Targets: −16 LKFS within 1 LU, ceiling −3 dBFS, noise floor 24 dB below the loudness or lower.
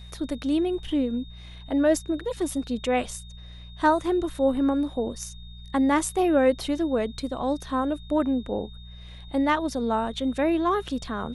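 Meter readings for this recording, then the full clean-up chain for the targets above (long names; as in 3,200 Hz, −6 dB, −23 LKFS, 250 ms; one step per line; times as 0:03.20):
mains hum 60 Hz; hum harmonics up to 180 Hz; level of the hum −41 dBFS; interfering tone 3,700 Hz; level of the tone −49 dBFS; integrated loudness −25.5 LKFS; sample peak −9.5 dBFS; target loudness −16.0 LKFS
→ hum removal 60 Hz, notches 3
notch filter 3,700 Hz, Q 30
level +9.5 dB
brickwall limiter −3 dBFS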